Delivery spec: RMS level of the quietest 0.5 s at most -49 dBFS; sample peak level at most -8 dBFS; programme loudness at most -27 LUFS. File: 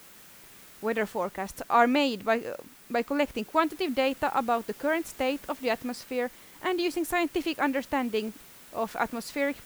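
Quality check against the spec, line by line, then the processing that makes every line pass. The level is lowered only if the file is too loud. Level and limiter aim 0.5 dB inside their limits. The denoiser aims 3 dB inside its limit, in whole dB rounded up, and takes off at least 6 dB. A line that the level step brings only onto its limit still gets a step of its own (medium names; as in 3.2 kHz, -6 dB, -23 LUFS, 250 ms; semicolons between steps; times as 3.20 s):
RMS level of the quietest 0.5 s -51 dBFS: pass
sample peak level -8.5 dBFS: pass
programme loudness -29.0 LUFS: pass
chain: none needed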